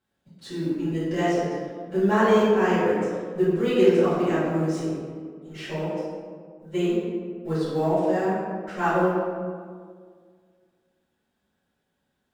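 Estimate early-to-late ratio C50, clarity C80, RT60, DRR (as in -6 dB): -2.5 dB, 0.0 dB, 1.9 s, -17.5 dB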